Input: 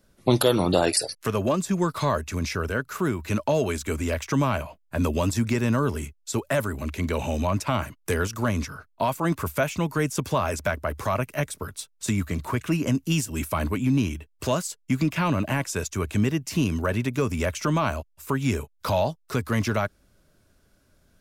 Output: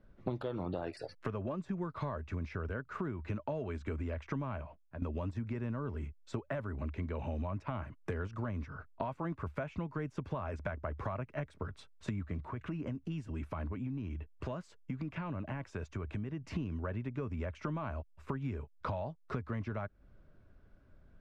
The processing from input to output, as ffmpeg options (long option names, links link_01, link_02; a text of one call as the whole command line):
ffmpeg -i in.wav -filter_complex "[0:a]asettb=1/sr,asplit=3[link_01][link_02][link_03];[link_01]atrim=end=12.414[link_04];[link_02]atrim=start=12.41:end=16.44,asetpts=PTS-STARTPTS,afade=type=in:duration=0.004:curve=qsin,afade=type=out:start_time=4.026:duration=0.004:curve=qsin,acompressor=threshold=-37dB:ratio=2:attack=3.2:release=140:knee=1:detection=peak[link_05];[link_03]atrim=start=16.436[link_06];[link_04][link_05]acrossfade=duration=0.004:curve1=hsin:curve2=qsin[link_07];[link_07][link_06]acrossfade=duration=0.004:curve1=qsin:curve2=hsin,asplit=2[link_08][link_09];[link_08]atrim=end=5.02,asetpts=PTS-STARTPTS,afade=type=out:start_time=4.51:duration=0.51:silence=0.0707946[link_10];[link_09]atrim=start=5.02,asetpts=PTS-STARTPTS,afade=type=in:duration=0.004:curve=hsin:silence=0.0707946[link_11];[link_10][link_11]concat=n=2:v=0:a=1,lowpass=1900,lowshelf=frequency=95:gain=8.5,acompressor=threshold=-32dB:ratio=6,volume=-3dB" out.wav